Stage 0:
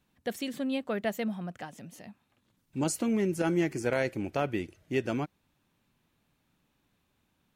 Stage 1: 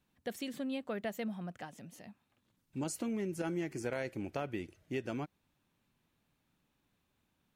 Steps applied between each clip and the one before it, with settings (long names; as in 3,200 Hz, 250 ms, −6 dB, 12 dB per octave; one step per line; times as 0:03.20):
downward compressor 2.5 to 1, threshold −30 dBFS, peak gain reduction 5.5 dB
level −4.5 dB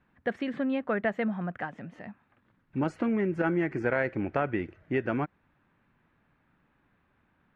low-pass with resonance 1,700 Hz, resonance Q 1.9
level +8.5 dB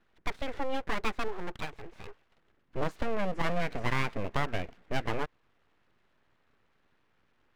full-wave rectification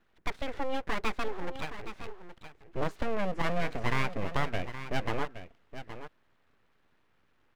single-tap delay 820 ms −11.5 dB